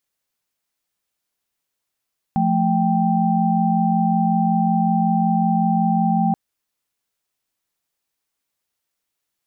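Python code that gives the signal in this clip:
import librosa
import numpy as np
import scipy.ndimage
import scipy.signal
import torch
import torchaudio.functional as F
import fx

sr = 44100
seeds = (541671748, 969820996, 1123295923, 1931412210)

y = fx.chord(sr, length_s=3.98, notes=(53, 57, 79), wave='sine', level_db=-19.5)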